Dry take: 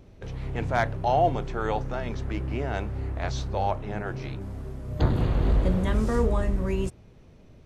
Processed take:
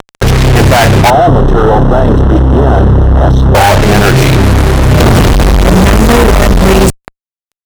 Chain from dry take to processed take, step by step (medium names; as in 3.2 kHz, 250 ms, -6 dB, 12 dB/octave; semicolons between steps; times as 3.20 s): fuzz box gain 50 dB, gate -42 dBFS; 1.10–3.55 s: boxcar filter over 19 samples; loudness maximiser +14.5 dB; trim -1 dB